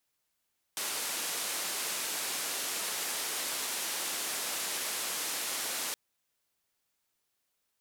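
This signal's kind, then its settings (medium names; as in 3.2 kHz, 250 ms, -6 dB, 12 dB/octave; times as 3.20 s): noise band 280–12000 Hz, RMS -35 dBFS 5.17 s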